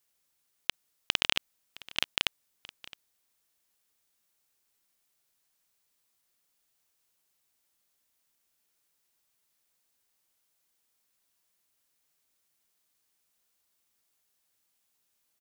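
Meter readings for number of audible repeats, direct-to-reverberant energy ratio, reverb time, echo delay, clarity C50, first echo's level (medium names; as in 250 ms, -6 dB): 1, no reverb, no reverb, 665 ms, no reverb, -20.0 dB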